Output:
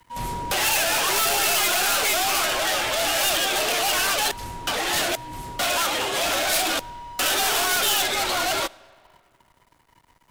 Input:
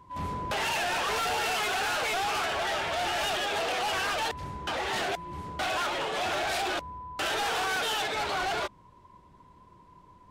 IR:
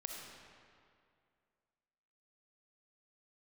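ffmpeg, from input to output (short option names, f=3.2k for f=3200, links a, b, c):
-filter_complex "[0:a]aemphasis=mode=production:type=75fm,aeval=exprs='sgn(val(0))*max(abs(val(0))-0.002,0)':c=same,afreqshift=-44,aeval=exprs='clip(val(0),-1,0.0668)':c=same,asplit=2[a][b];[1:a]atrim=start_sample=2205[c];[b][c]afir=irnorm=-1:irlink=0,volume=-17.5dB[d];[a][d]amix=inputs=2:normalize=0,volume=4.5dB"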